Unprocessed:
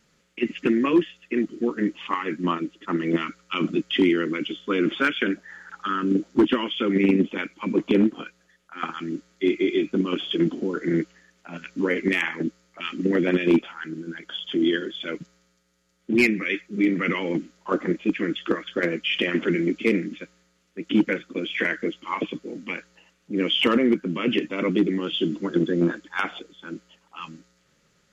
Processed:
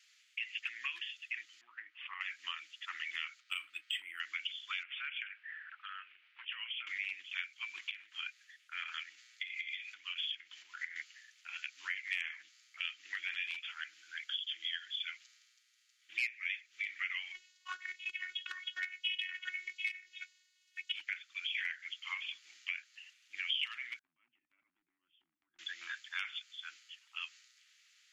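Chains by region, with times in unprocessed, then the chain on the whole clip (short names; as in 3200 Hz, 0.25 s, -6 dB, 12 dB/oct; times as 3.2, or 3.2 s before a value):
1.61–2.21 LPF 1400 Hz + compressor 2:1, threshold -29 dBFS
3.4–4.2 treble ducked by the level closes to 1200 Hz, closed at -15 dBFS + high shelf 3900 Hz -6.5 dB + decimation joined by straight lines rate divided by 4×
4.83–6.87 Chebyshev band-pass 450–2700 Hz, order 3 + compressor 2:1, threshold -40 dBFS
7.8–10.96 compressor 16:1, threshold -29 dBFS + bell 2000 Hz +5 dB 0.97 oct
17.32–20.93 bell 190 Hz -9.5 dB 0.31 oct + transient shaper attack +6 dB, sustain -3 dB + robotiser 366 Hz
23.99–25.59 synth low-pass 210 Hz, resonance Q 2 + compressor 4:1, threshold -32 dBFS
whole clip: inverse Chebyshev high-pass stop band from 510 Hz, stop band 70 dB; tilt -4 dB/oct; compressor 3:1, threshold -49 dBFS; gain +10.5 dB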